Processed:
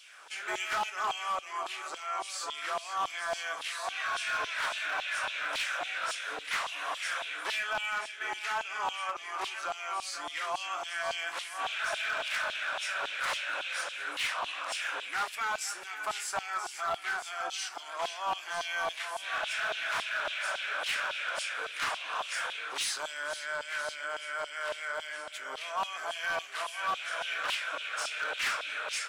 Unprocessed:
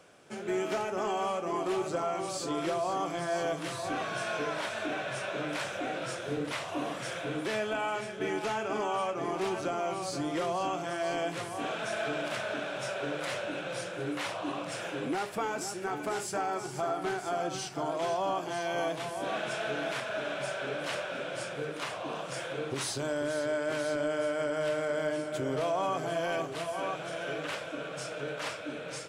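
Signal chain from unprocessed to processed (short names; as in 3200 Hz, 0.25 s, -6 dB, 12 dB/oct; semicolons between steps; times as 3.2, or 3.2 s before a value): vocal rider 2 s; LFO high-pass saw down 3.6 Hz 860–3400 Hz; overloaded stage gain 27.5 dB; gain +1 dB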